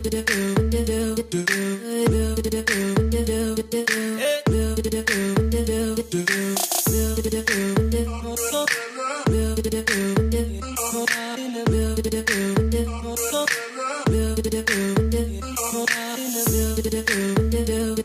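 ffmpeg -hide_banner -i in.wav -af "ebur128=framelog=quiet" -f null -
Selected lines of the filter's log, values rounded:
Integrated loudness:
  I:         -22.5 LUFS
  Threshold: -32.5 LUFS
Loudness range:
  LRA:         1.2 LU
  Threshold: -42.5 LUFS
  LRA low:   -23.1 LUFS
  LRA high:  -21.9 LUFS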